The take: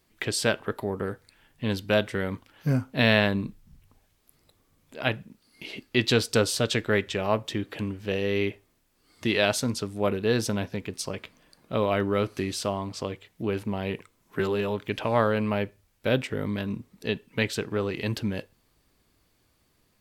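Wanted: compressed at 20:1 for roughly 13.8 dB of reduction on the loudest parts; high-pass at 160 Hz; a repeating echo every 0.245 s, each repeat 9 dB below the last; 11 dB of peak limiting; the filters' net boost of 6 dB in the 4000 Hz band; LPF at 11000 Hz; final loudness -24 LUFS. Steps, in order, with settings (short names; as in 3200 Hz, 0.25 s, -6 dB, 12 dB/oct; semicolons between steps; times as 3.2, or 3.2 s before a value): HPF 160 Hz; LPF 11000 Hz; bell 4000 Hz +7.5 dB; compressor 20:1, threshold -26 dBFS; limiter -22 dBFS; feedback echo 0.245 s, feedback 35%, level -9 dB; gain +11 dB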